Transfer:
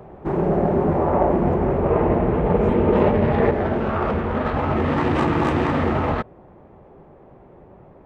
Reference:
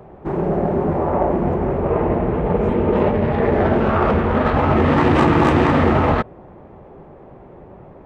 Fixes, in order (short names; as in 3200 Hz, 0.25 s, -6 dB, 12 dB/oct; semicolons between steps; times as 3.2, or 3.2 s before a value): gain correction +5.5 dB, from 3.51